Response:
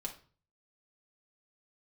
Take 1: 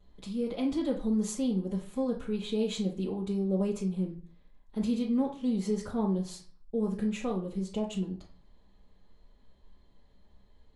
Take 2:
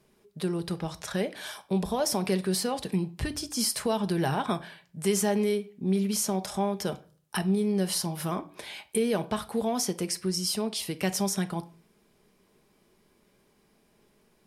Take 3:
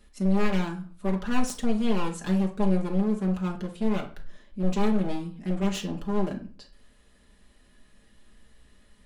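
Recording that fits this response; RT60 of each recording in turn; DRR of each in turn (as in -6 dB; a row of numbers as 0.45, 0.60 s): 3; 0.40, 0.40, 0.40 s; -10.0, 9.5, -0.5 dB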